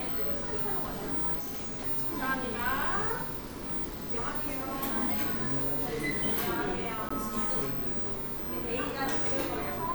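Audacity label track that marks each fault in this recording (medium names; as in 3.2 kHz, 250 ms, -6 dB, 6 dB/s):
1.390000	1.810000	clipped -33.5 dBFS
7.090000	7.110000	dropout 15 ms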